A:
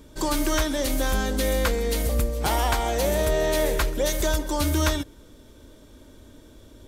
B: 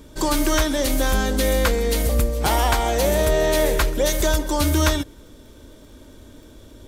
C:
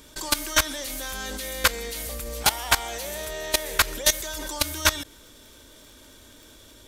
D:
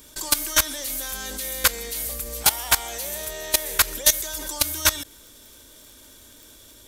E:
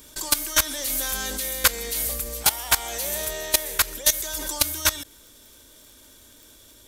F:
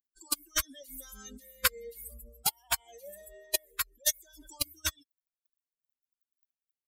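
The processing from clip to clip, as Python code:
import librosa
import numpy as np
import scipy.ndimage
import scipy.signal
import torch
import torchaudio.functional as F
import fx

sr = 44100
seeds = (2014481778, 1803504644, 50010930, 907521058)

y1 = fx.dmg_crackle(x, sr, seeds[0], per_s=29.0, level_db=-47.0)
y1 = F.gain(torch.from_numpy(y1), 4.0).numpy()
y2 = fx.tilt_shelf(y1, sr, db=-7.5, hz=860.0)
y2 = fx.level_steps(y2, sr, step_db=17)
y2 = F.gain(torch.from_numpy(y2), 1.0).numpy()
y3 = fx.high_shelf(y2, sr, hz=6900.0, db=11.0)
y3 = F.gain(torch.from_numpy(y3), -2.0).numpy()
y4 = fx.rider(y3, sr, range_db=4, speed_s=0.5)
y5 = fx.bin_expand(y4, sr, power=3.0)
y5 = F.gain(torch.from_numpy(y5), -4.0).numpy()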